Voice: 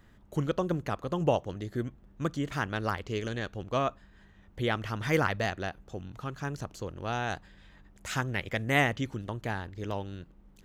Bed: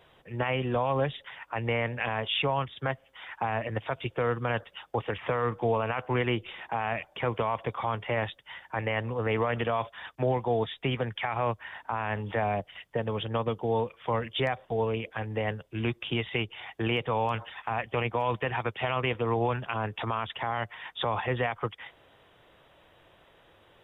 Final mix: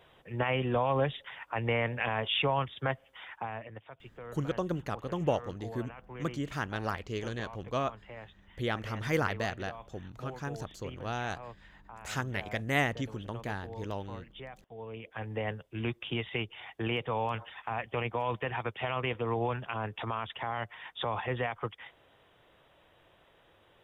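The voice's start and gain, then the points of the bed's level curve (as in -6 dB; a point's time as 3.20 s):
4.00 s, -3.0 dB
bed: 3.16 s -1 dB
3.89 s -17.5 dB
14.75 s -17.5 dB
15.24 s -4 dB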